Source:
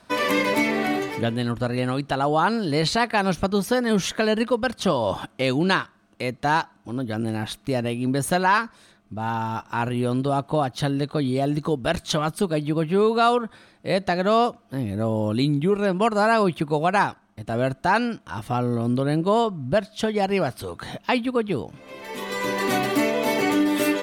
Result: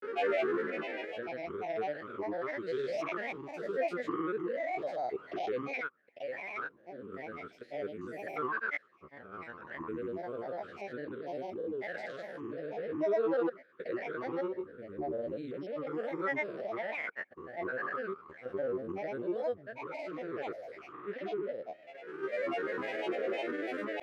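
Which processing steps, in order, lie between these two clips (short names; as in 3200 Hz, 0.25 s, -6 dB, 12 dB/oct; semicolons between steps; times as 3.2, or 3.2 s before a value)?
stepped spectrum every 0.2 s; double band-pass 900 Hz, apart 1.7 oct; grains, grains 20/s, pitch spread up and down by 7 st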